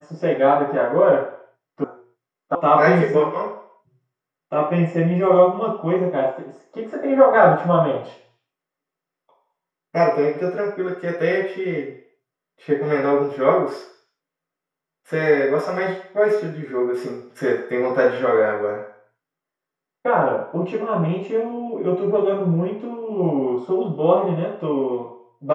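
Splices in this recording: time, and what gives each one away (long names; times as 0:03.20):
0:01.84: cut off before it has died away
0:02.55: cut off before it has died away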